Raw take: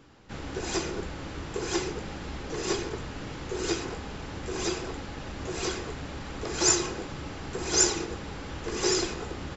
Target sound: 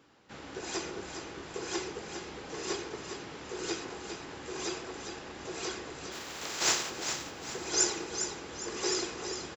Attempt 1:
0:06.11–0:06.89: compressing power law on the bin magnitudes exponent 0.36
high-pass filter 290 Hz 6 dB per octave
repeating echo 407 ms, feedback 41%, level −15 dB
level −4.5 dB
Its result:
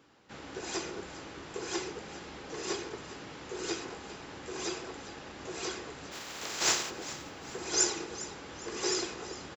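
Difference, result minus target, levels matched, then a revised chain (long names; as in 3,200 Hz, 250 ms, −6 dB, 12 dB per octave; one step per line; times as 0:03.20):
echo-to-direct −7.5 dB
0:06.11–0:06.89: compressing power law on the bin magnitudes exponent 0.36
high-pass filter 290 Hz 6 dB per octave
repeating echo 407 ms, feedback 41%, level −7.5 dB
level −4.5 dB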